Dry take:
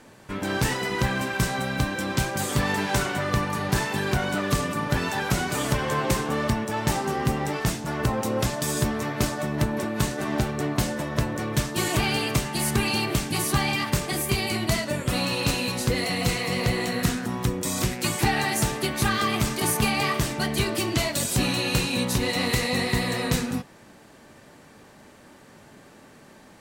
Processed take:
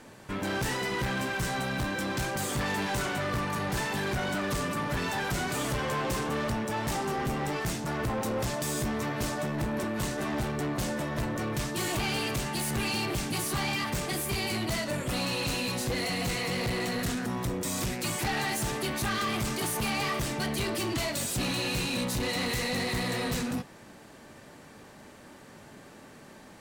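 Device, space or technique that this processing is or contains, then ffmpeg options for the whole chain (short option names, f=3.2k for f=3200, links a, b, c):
saturation between pre-emphasis and de-emphasis: -af "highshelf=f=8.9k:g=6.5,asoftclip=type=tanh:threshold=-26.5dB,highshelf=f=8.9k:g=-6.5"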